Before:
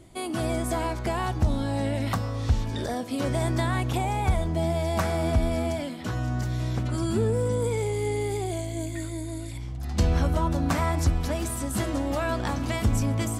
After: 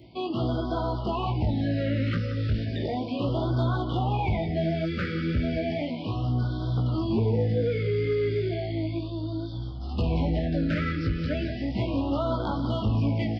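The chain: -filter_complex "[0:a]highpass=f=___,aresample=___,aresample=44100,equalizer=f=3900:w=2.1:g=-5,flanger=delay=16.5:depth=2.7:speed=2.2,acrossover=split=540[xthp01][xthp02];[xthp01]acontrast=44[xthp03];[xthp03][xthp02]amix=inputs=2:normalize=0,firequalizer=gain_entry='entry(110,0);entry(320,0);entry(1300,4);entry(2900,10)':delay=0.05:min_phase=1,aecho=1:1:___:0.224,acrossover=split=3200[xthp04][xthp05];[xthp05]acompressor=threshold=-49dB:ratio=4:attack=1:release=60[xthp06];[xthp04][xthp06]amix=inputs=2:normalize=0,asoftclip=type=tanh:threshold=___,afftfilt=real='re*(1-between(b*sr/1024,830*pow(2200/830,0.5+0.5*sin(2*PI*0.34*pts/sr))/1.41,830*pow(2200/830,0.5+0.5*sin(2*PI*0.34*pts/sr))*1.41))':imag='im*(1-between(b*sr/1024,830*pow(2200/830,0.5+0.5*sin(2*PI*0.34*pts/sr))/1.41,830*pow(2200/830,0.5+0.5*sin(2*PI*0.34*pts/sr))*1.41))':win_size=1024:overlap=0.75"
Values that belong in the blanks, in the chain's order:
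82, 11025, 176, -18dB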